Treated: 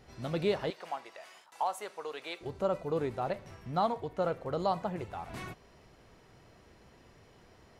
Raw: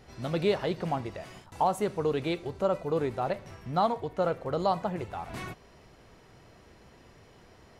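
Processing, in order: 0.70–2.41 s: high-pass 750 Hz 12 dB/octave; trim -3.5 dB

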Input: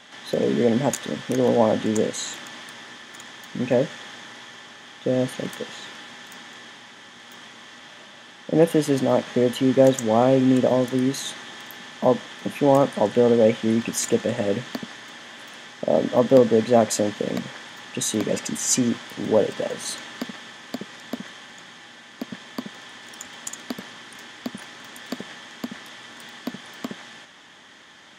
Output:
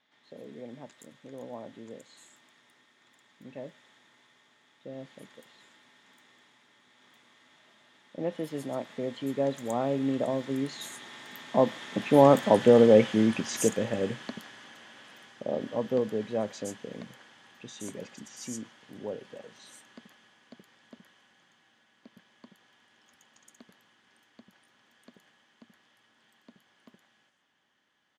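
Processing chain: Doppler pass-by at 12.57 s, 14 m/s, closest 11 m; bands offset in time lows, highs 120 ms, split 5.9 kHz

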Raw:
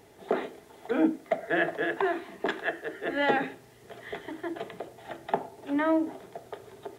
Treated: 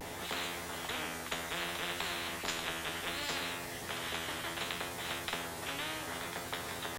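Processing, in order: feedback comb 85 Hz, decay 0.32 s, harmonics all, mix 90%; vibrato 0.65 Hz 47 cents; spectrum-flattening compressor 10:1

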